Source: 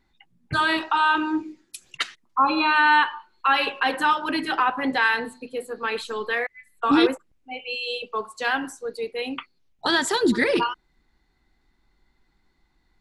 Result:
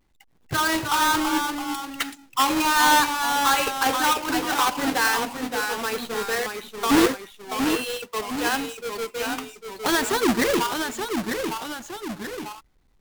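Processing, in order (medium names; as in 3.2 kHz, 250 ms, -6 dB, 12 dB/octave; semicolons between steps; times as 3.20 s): square wave that keeps the level; ever faster or slower copies 276 ms, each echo -1 st, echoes 2, each echo -6 dB; trim -4.5 dB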